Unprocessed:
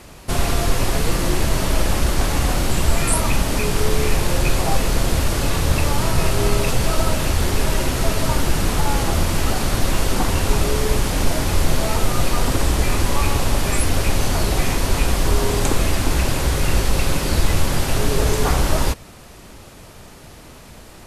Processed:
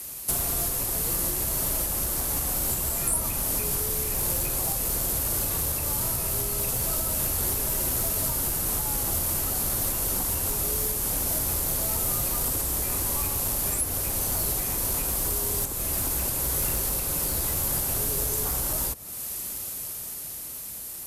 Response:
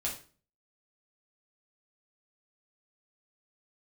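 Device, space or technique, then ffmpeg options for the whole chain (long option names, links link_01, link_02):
FM broadcast chain: -filter_complex "[0:a]highpass=frequency=49:poles=1,dynaudnorm=framelen=370:gausssize=9:maxgain=11.5dB,acrossover=split=130|340|1400[link_01][link_02][link_03][link_04];[link_01]acompressor=threshold=-20dB:ratio=4[link_05];[link_02]acompressor=threshold=-31dB:ratio=4[link_06];[link_03]acompressor=threshold=-26dB:ratio=4[link_07];[link_04]acompressor=threshold=-36dB:ratio=4[link_08];[link_05][link_06][link_07][link_08]amix=inputs=4:normalize=0,aemphasis=mode=production:type=50fm,alimiter=limit=-12.5dB:level=0:latency=1:release=460,asoftclip=type=hard:threshold=-16.5dB,lowpass=frequency=15000:width=0.5412,lowpass=frequency=15000:width=1.3066,aemphasis=mode=production:type=50fm,volume=-8.5dB"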